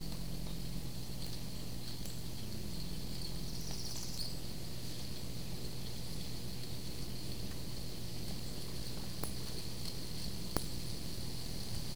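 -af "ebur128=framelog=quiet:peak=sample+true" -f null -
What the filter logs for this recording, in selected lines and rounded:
Integrated loudness:
  I:         -43.4 LUFS
  Threshold: -53.3 LUFS
Loudness range:
  LRA:         1.7 LU
  Threshold: -63.4 LUFS
  LRA low:   -44.2 LUFS
  LRA high:  -42.5 LUFS
Sample peak:
  Peak:      -10.9 dBFS
True peak:
  Peak:       -9.5 dBFS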